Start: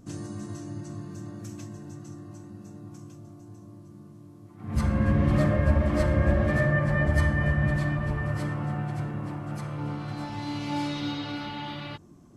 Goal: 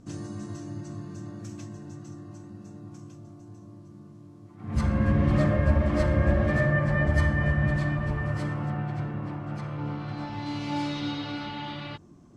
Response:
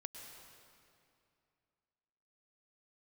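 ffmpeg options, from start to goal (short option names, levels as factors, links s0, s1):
-af "asetnsamples=n=441:p=0,asendcmd='8.7 lowpass f 4600;10.46 lowpass f 7500',lowpass=7800"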